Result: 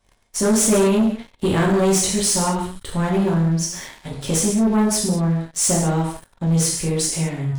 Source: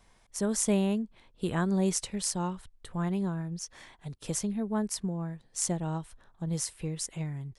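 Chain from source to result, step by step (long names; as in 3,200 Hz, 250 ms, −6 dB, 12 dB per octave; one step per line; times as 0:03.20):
reverb whose tail is shaped and stops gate 250 ms falling, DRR −4 dB
leveller curve on the samples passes 3
level −1 dB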